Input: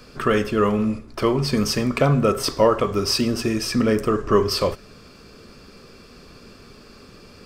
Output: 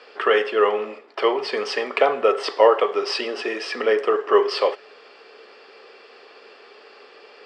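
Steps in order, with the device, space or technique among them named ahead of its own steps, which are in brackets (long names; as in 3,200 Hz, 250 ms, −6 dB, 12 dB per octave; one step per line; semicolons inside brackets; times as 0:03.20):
phone speaker on a table (loudspeaker in its box 420–6,600 Hz, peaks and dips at 430 Hz +6 dB, 800 Hz +9 dB, 1,900 Hz +8 dB, 3,000 Hz +8 dB, 6,300 Hz −10 dB)
high-shelf EQ 4,500 Hz −5.5 dB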